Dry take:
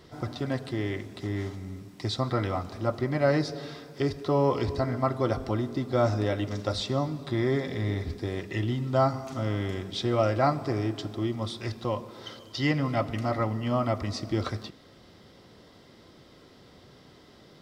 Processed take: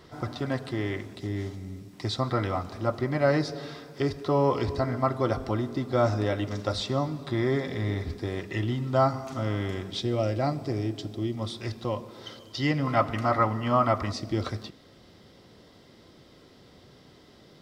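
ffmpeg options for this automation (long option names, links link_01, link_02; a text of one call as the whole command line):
ffmpeg -i in.wav -af "asetnsamples=nb_out_samples=441:pad=0,asendcmd='1.15 equalizer g -5.5;1.93 equalizer g 2;10 equalizer g -10;11.37 equalizer g -2;12.87 equalizer g 9;14.12 equalizer g -2',equalizer=frequency=1200:width_type=o:width=1.4:gain=3.5" out.wav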